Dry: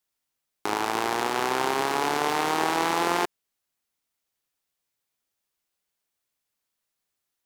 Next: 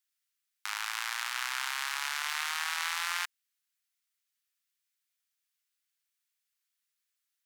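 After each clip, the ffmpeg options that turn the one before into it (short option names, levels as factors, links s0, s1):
-af "highpass=f=1400:w=0.5412,highpass=f=1400:w=1.3066,volume=0.794"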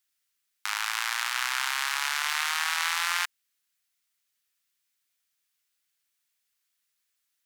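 -af "acontrast=38"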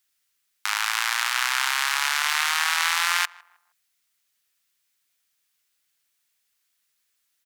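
-filter_complex "[0:a]asplit=2[s0][s1];[s1]adelay=156,lowpass=f=1200:p=1,volume=0.1,asplit=2[s2][s3];[s3]adelay=156,lowpass=f=1200:p=1,volume=0.44,asplit=2[s4][s5];[s5]adelay=156,lowpass=f=1200:p=1,volume=0.44[s6];[s0][s2][s4][s6]amix=inputs=4:normalize=0,volume=1.78"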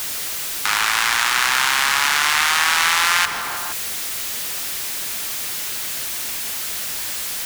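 -af "aeval=exprs='val(0)+0.5*0.0668*sgn(val(0))':c=same,volume=1.5"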